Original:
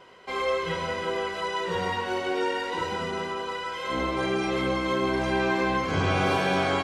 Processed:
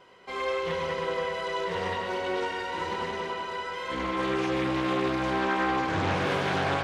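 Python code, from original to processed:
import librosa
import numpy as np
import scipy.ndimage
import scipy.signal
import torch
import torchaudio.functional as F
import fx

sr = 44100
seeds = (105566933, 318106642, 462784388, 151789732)

y = fx.echo_wet_lowpass(x, sr, ms=99, feedback_pct=84, hz=3900.0, wet_db=-7.0)
y = fx.doppler_dist(y, sr, depth_ms=0.38)
y = y * librosa.db_to_amplitude(-4.0)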